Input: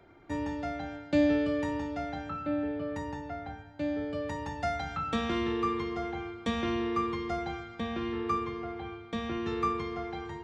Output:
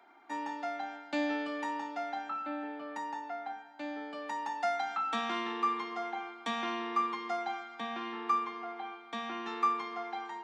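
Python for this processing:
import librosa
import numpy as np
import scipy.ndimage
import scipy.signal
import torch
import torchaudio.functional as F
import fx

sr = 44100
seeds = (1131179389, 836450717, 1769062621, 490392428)

y = scipy.signal.sosfilt(scipy.signal.cheby1(4, 1.0, 230.0, 'highpass', fs=sr, output='sos'), x)
y = fx.low_shelf_res(y, sr, hz=650.0, db=-6.5, q=3.0)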